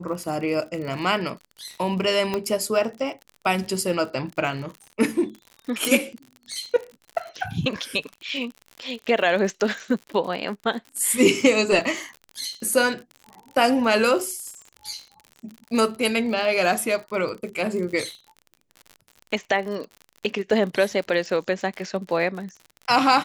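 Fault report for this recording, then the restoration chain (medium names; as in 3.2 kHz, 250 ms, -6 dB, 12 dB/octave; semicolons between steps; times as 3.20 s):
crackle 54 per s -32 dBFS
2.34 s: pop -11 dBFS
5.85 s: pop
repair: de-click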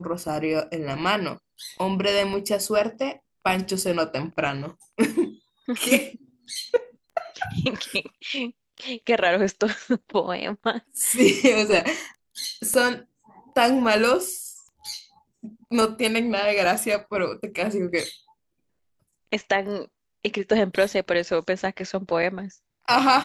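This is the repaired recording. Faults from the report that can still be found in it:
2.34 s: pop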